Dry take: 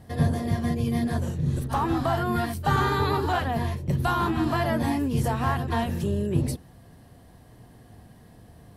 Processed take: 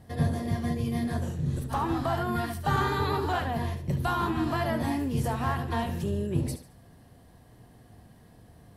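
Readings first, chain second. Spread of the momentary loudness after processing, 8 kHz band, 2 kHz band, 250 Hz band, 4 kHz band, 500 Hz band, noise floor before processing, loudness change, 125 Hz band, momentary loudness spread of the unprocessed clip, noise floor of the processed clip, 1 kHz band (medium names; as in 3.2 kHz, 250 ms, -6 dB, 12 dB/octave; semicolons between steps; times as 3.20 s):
4 LU, -3.0 dB, -3.0 dB, -3.5 dB, -3.0 dB, -3.5 dB, -51 dBFS, -3.5 dB, -3.5 dB, 4 LU, -55 dBFS, -3.0 dB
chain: thinning echo 72 ms, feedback 35%, level -11 dB; trim -3.5 dB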